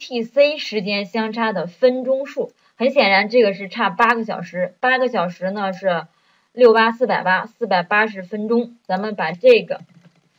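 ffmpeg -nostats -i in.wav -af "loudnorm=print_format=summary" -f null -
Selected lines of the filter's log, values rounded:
Input Integrated:    -18.2 LUFS
Input True Peak:      -2.6 dBTP
Input LRA:             1.5 LU
Input Threshold:     -28.8 LUFS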